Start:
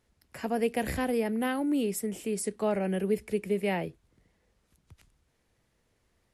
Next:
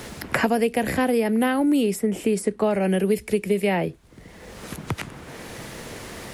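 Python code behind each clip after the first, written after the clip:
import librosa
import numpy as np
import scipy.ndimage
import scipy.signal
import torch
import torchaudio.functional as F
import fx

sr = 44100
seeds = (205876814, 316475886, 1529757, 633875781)

y = fx.band_squash(x, sr, depth_pct=100)
y = F.gain(torch.from_numpy(y), 7.5).numpy()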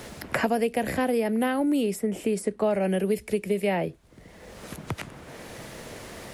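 y = fx.peak_eq(x, sr, hz=610.0, db=4.0, octaves=0.48)
y = F.gain(torch.from_numpy(y), -4.5).numpy()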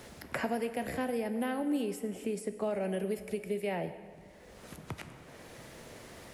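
y = fx.rev_plate(x, sr, seeds[0], rt60_s=1.9, hf_ratio=0.75, predelay_ms=0, drr_db=9.5)
y = F.gain(torch.from_numpy(y), -9.0).numpy()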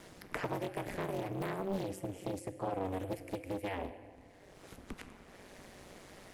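y = x * np.sin(2.0 * np.pi * 95.0 * np.arange(len(x)) / sr)
y = fx.doppler_dist(y, sr, depth_ms=0.67)
y = F.gain(torch.from_numpy(y), -1.0).numpy()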